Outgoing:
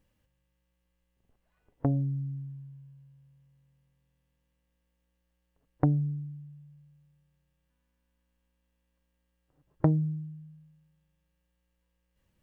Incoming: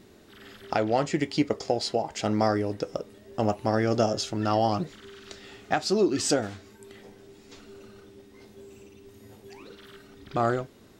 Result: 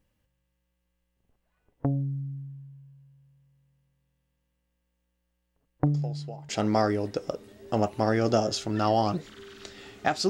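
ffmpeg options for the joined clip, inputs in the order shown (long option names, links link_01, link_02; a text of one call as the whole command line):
ffmpeg -i cue0.wav -i cue1.wav -filter_complex "[1:a]asplit=2[link_01][link_02];[0:a]apad=whole_dur=10.29,atrim=end=10.29,atrim=end=6.492[link_03];[link_02]atrim=start=2.148:end=5.95[link_04];[link_01]atrim=start=1.52:end=2.15,asetpts=PTS-STARTPTS,volume=-15.5dB,afade=type=in:duration=0.004:curve=hsin,afade=type=out:start_time=0.626:duration=0.004:curve=hsin,adelay=5860[link_05];[link_03][link_04]acrossfade=duration=0.004:curve1=hsin:curve2=hsin[link_06];[link_06][link_05]amix=inputs=2:normalize=0" out.wav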